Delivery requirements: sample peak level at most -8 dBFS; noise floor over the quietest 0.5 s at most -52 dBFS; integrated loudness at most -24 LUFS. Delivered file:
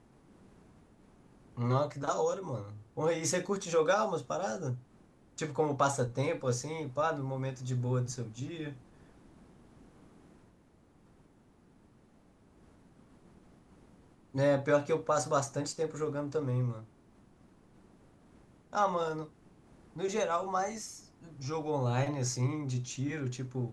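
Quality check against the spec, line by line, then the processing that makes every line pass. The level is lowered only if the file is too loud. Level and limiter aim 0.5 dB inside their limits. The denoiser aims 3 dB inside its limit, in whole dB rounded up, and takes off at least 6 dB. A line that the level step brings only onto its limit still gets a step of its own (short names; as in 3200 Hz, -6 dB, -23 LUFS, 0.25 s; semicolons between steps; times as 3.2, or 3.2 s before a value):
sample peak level -15.5 dBFS: OK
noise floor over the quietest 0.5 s -63 dBFS: OK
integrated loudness -33.0 LUFS: OK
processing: none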